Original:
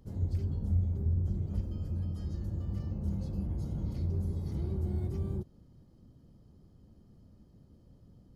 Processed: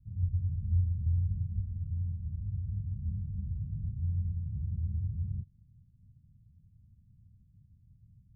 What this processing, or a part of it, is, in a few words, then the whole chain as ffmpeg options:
the neighbour's flat through the wall: -af "lowpass=f=170:w=0.5412,lowpass=f=170:w=1.3066,equalizer=f=100:t=o:w=0.84:g=7,volume=-4.5dB"

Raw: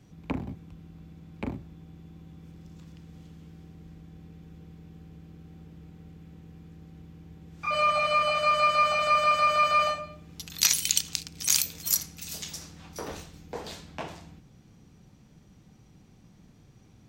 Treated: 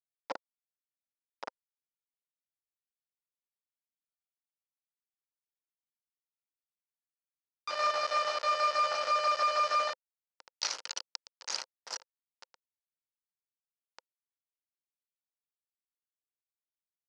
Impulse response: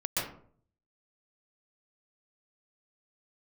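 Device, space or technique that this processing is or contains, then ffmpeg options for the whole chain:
hand-held game console: -af "acrusher=bits=3:mix=0:aa=0.000001,highpass=480,equalizer=f=520:t=q:w=4:g=8,equalizer=f=920:t=q:w=4:g=8,equalizer=f=1.4k:t=q:w=4:g=5,equalizer=f=2.4k:t=q:w=4:g=-3,equalizer=f=3.5k:t=q:w=4:g=-6,equalizer=f=5k:t=q:w=4:g=5,lowpass=f=5.3k:w=0.5412,lowpass=f=5.3k:w=1.3066,volume=-9dB"

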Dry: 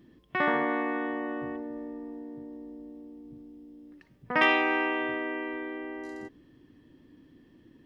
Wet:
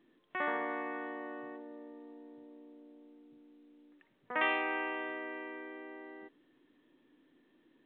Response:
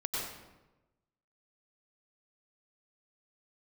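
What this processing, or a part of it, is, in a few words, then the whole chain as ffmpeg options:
telephone: -af "highpass=340,lowpass=3.5k,volume=-7.5dB" -ar 8000 -c:a pcm_mulaw

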